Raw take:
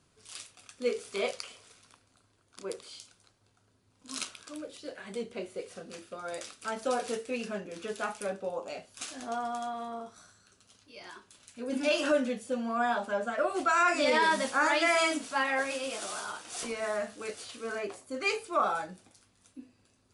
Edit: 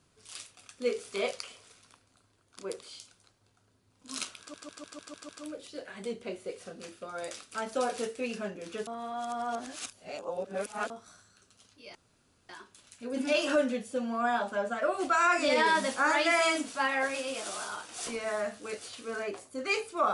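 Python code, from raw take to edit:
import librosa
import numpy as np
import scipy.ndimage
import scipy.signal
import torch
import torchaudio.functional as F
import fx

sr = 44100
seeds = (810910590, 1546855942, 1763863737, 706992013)

y = fx.edit(x, sr, fx.stutter(start_s=4.39, slice_s=0.15, count=7),
    fx.reverse_span(start_s=7.97, length_s=2.03),
    fx.insert_room_tone(at_s=11.05, length_s=0.54), tone=tone)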